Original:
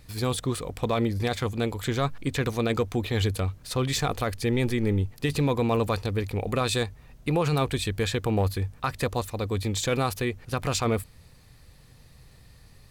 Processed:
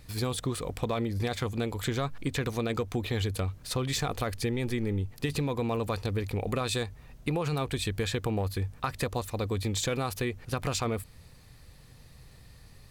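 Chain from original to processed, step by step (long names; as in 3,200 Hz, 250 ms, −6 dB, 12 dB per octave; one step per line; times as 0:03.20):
downward compressor, threshold −26 dBFS, peak gain reduction 7 dB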